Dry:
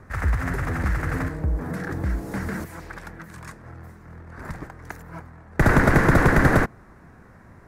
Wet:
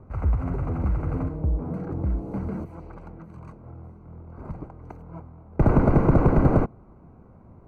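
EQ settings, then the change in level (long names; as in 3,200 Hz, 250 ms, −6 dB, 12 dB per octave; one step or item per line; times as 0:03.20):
moving average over 25 samples
0.0 dB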